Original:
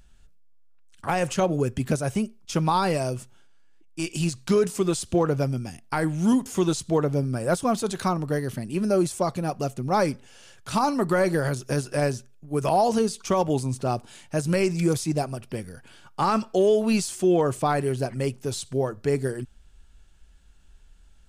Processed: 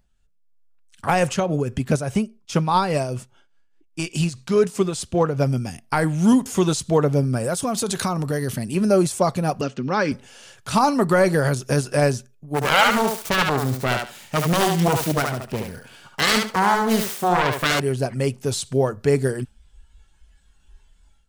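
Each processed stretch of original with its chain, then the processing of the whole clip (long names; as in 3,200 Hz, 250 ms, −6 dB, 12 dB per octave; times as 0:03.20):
0:01.29–0:05.46: high-shelf EQ 7,400 Hz −5.5 dB + shaped tremolo triangle 4.9 Hz, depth 60%
0:07.44–0:08.75: high-shelf EQ 4,100 Hz +5.5 dB + downward compressor, threshold −25 dBFS
0:09.61–0:10.12: downward compressor 2 to 1, threshold −24 dBFS + loudspeaker in its box 180–5,800 Hz, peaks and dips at 270 Hz +4 dB, 710 Hz −10 dB, 1,600 Hz +7 dB, 2,900 Hz +7 dB
0:12.54–0:17.80: phase distortion by the signal itself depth 0.86 ms + feedback echo with a high-pass in the loop 72 ms, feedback 22%, high-pass 390 Hz, level −3.5 dB
whole clip: noise reduction from a noise print of the clip's start 9 dB; parametric band 330 Hz −6 dB 0.2 octaves; automatic gain control gain up to 11 dB; level −4 dB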